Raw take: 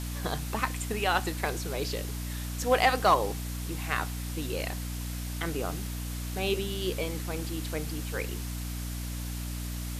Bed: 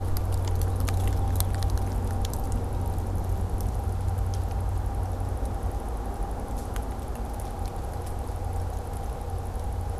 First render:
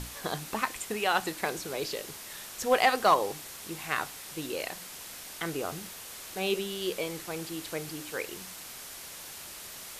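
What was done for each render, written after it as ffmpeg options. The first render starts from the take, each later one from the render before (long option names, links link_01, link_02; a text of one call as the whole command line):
ffmpeg -i in.wav -af "bandreject=frequency=60:width_type=h:width=6,bandreject=frequency=120:width_type=h:width=6,bandreject=frequency=180:width_type=h:width=6,bandreject=frequency=240:width_type=h:width=6,bandreject=frequency=300:width_type=h:width=6" out.wav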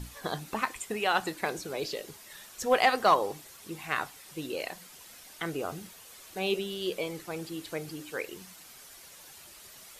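ffmpeg -i in.wav -af "afftdn=noise_reduction=9:noise_floor=-44" out.wav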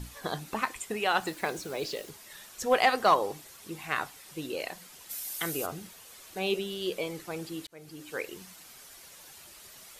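ffmpeg -i in.wav -filter_complex "[0:a]asettb=1/sr,asplit=3[link_01][link_02][link_03];[link_01]atrim=end=1.224[link_04];[link_02]atrim=start=1.22:end=2.1,asetpts=PTS-STARTPTS,afade=type=in:duration=0.004:curve=qsin,afade=type=out:start_time=0.876:duration=0.004:curve=qsin,acrusher=bits=7:mix=0:aa=0.5[link_05];[link_03]atrim=start=2.096[link_06];[link_04][link_05]acrossfade=duration=0.004:curve1=hsin:curve2=qsin[link_07];[link_07][link_06]acrossfade=duration=0.004:curve1=qsin:curve2=hsin,asplit=3[link_08][link_09][link_10];[link_08]afade=type=out:start_time=5.09:duration=0.02[link_11];[link_09]aemphasis=mode=production:type=75fm,afade=type=in:start_time=5.09:duration=0.02,afade=type=out:start_time=5.65:duration=0.02[link_12];[link_10]afade=type=in:start_time=5.65:duration=0.02[link_13];[link_11][link_12][link_13]amix=inputs=3:normalize=0,asplit=2[link_14][link_15];[link_14]atrim=end=7.67,asetpts=PTS-STARTPTS,afade=type=out:start_time=7.666:duration=0.004:curve=hsin[link_16];[link_15]atrim=start=7.67,asetpts=PTS-STARTPTS,afade=type=in:duration=0.49[link_17];[link_16][link_17]concat=n=2:v=0:a=1" out.wav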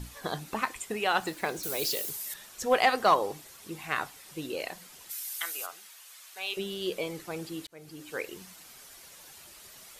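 ffmpeg -i in.wav -filter_complex "[0:a]asettb=1/sr,asplit=3[link_01][link_02][link_03];[link_01]atrim=end=1.634[link_04];[link_02]atrim=start=1.63:end=2.34,asetpts=PTS-STARTPTS,afade=type=in:duration=0.004:curve=qsin,afade=type=out:start_time=0.706:duration=0.004:curve=qsin,aemphasis=mode=production:type=75fm[link_05];[link_03]atrim=start=2.336[link_06];[link_04][link_05]acrossfade=duration=0.004:curve1=hsin:curve2=qsin[link_07];[link_07][link_06]acrossfade=duration=0.004:curve1=qsin:curve2=hsin,asettb=1/sr,asplit=3[link_08][link_09][link_10];[link_08]atrim=end=5.104[link_11];[link_09]atrim=start=5.1:end=6.57,asetpts=PTS-STARTPTS,afade=type=in:duration=0.004:curve=qsin,afade=type=out:start_time=1.466:duration=0.004:curve=qsin,highpass=1100[link_12];[link_10]atrim=start=6.566[link_13];[link_11][link_12]acrossfade=duration=0.004:curve1=hsin:curve2=qsin[link_14];[link_14][link_13]acrossfade=duration=0.004:curve1=qsin:curve2=hsin" out.wav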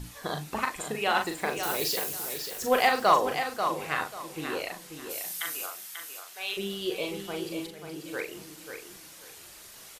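ffmpeg -i in.wav -filter_complex "[0:a]asplit=2[link_01][link_02];[link_02]adelay=40,volume=-5dB[link_03];[link_01][link_03]amix=inputs=2:normalize=0,aecho=1:1:539|1078|1617:0.422|0.101|0.0243" out.wav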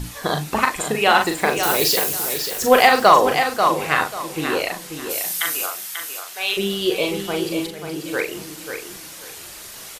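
ffmpeg -i in.wav -af "volume=11dB,alimiter=limit=-2dB:level=0:latency=1" out.wav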